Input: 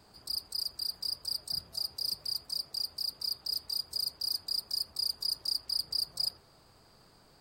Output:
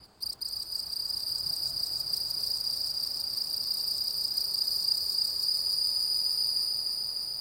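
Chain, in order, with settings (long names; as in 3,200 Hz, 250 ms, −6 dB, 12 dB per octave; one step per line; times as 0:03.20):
reversed piece by piece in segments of 203 ms
convolution reverb RT60 0.95 s, pre-delay 234 ms, DRR 4.5 dB
frozen spectrum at 0:05.47, 1.20 s
feedback echo at a low word length 300 ms, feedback 80%, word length 10 bits, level −3.5 dB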